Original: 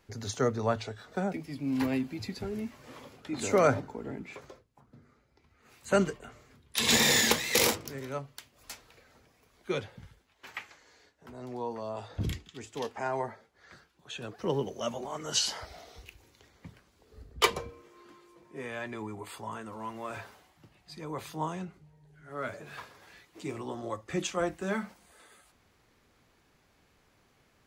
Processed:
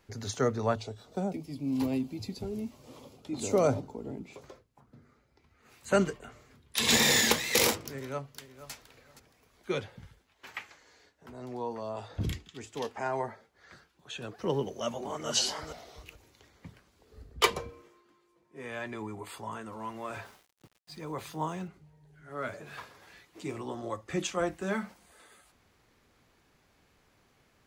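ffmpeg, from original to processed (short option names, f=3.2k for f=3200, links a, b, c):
-filter_complex "[0:a]asettb=1/sr,asplit=3[a][b][c];[a]atrim=end=0.754[d];[b]atrim=start=0.75:end=4.44,asetpts=PTS-STARTPTS,afade=t=in:d=0.004:c=qsin,afade=t=out:st=3.686:d=0.004:c=qsin,equalizer=f=1.7k:t=o:w=0.95:g=-15[e];[c]atrim=start=4.436[f];[d][e]acrossfade=d=0.004:c1=hsin:c2=qsin[g];[g][f]acrossfade=d=0.004:c1=qsin:c2=hsin,asplit=2[h][i];[i]afade=t=in:st=7.87:d=0.01,afade=t=out:st=8.72:d=0.01,aecho=0:1:470|940:0.199526|0.0399052[j];[h][j]amix=inputs=2:normalize=0,asplit=2[k][l];[l]afade=t=in:st=14.62:d=0.01,afade=t=out:st=15.29:d=0.01,aecho=0:1:430|860|1290:0.562341|0.0843512|0.0126527[m];[k][m]amix=inputs=2:normalize=0,asettb=1/sr,asplit=3[n][o][p];[n]atrim=end=20.254[q];[o]atrim=start=20.25:end=21.68,asetpts=PTS-STARTPTS,afade=t=in:d=0.004:c=qsin,afade=t=out:st=1.426:d=0.004:c=qsin,aeval=exprs='val(0)*gte(abs(val(0)),0.00168)':c=same[r];[p]atrim=start=21.676[s];[q][r]acrossfade=d=0.004:c1=hsin:c2=qsin[t];[t][s]acrossfade=d=0.004:c1=qsin:c2=hsin,asplit=3[u][v][w];[u]atrim=end=18.02,asetpts=PTS-STARTPTS,afade=t=out:st=17.74:d=0.28:c=qsin:silence=0.281838[x];[v]atrim=start=18.02:end=18.51,asetpts=PTS-STARTPTS,volume=-11dB[y];[w]atrim=start=18.51,asetpts=PTS-STARTPTS,afade=t=in:d=0.28:c=qsin:silence=0.281838[z];[x][y][z]concat=n=3:v=0:a=1"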